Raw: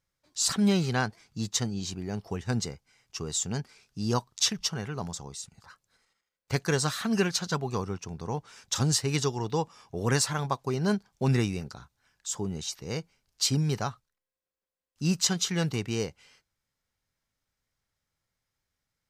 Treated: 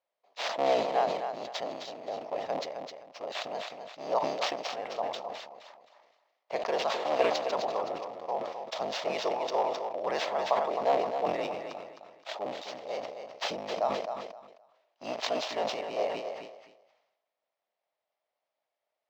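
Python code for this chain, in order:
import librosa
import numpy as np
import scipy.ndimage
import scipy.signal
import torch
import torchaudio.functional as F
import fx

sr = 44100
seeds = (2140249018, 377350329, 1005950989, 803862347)

y = fx.cycle_switch(x, sr, every=3, mode='inverted')
y = fx.peak_eq(y, sr, hz=1500.0, db=-14.0, octaves=0.29)
y = fx.sample_hold(y, sr, seeds[0], rate_hz=11000.0, jitter_pct=0)
y = fx.highpass_res(y, sr, hz=630.0, q=4.9)
y = fx.air_absorb(y, sr, metres=210.0)
y = fx.echo_feedback(y, sr, ms=261, feedback_pct=21, wet_db=-7.5)
y = fx.sustainer(y, sr, db_per_s=56.0)
y = y * librosa.db_to_amplitude(-3.0)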